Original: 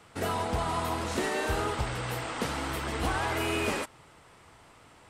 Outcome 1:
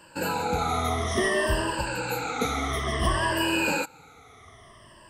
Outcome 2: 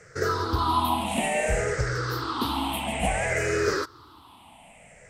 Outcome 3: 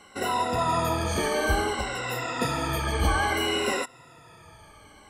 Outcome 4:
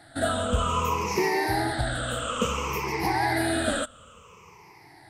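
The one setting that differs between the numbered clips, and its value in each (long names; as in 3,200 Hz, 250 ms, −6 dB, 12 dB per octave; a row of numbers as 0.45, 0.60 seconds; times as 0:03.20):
rippled gain that drifts along the octave scale, ripples per octave: 1.3, 0.54, 2.1, 0.79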